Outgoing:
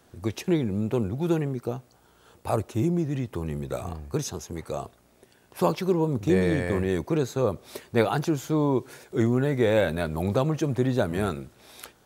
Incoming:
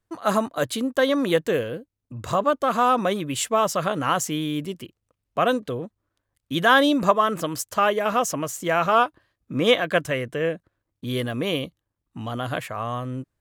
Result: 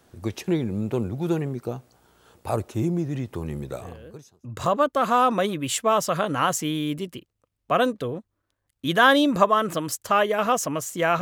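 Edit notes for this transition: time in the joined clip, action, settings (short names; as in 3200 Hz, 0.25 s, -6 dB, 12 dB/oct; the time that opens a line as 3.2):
outgoing
4.09 switch to incoming from 1.76 s, crossfade 0.92 s quadratic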